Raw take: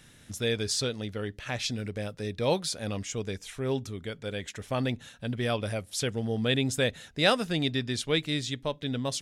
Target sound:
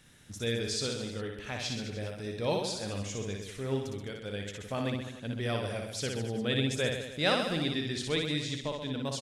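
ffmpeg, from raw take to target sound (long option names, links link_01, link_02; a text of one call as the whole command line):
ffmpeg -i in.wav -filter_complex "[0:a]aecho=1:1:60|129|208.4|299.6|404.5:0.631|0.398|0.251|0.158|0.1,acrossover=split=9400[link_01][link_02];[link_02]acompressor=threshold=-52dB:ratio=4:attack=1:release=60[link_03];[link_01][link_03]amix=inputs=2:normalize=0,volume=-5dB" out.wav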